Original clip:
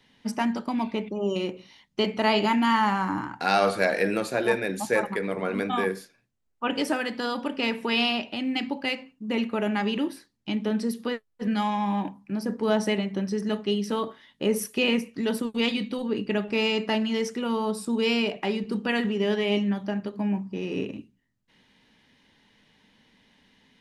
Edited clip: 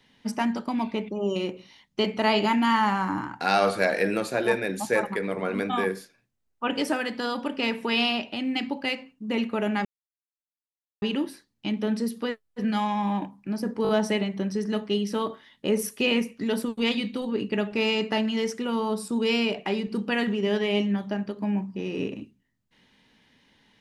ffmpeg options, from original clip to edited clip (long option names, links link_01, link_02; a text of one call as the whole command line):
ffmpeg -i in.wav -filter_complex "[0:a]asplit=5[link_01][link_02][link_03][link_04][link_05];[link_01]atrim=end=9.85,asetpts=PTS-STARTPTS,afade=type=out:start_time=9.846:duration=0.004:curve=hsin,apad=pad_dur=1.17[link_06];[link_02]atrim=start=9.85:end=12.682,asetpts=PTS-STARTPTS,afade=type=in:duration=0.004:curve=hsin[link_07];[link_03]atrim=start=12.658:end=12.682[link_08];[link_04]atrim=start=12.658:end=12.682[link_09];[link_05]atrim=start=12.658[link_10];[link_06][link_07]concat=n=2:v=0:a=1[link_11];[link_11][link_08]acrossfade=duration=0.004:curve1=hsin:curve2=hsin[link_12];[link_12][link_09]acrossfade=duration=0.004:curve1=hsin:curve2=hsin[link_13];[link_13][link_10]acrossfade=duration=0.004:curve1=hsin:curve2=hsin" out.wav